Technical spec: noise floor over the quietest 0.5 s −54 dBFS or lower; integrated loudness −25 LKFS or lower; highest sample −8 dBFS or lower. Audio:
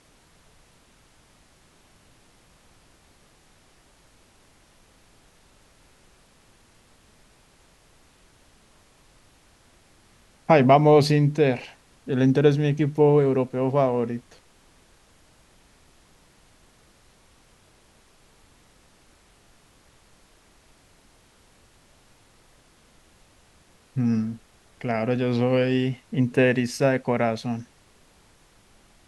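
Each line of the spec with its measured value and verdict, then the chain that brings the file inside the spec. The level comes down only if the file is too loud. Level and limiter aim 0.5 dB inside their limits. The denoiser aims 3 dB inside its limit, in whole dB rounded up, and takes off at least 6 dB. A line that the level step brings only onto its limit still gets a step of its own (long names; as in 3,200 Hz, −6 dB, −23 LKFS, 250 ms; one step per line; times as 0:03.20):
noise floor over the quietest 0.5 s −57 dBFS: in spec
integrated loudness −22.0 LKFS: out of spec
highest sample −4.5 dBFS: out of spec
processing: level −3.5 dB
brickwall limiter −8.5 dBFS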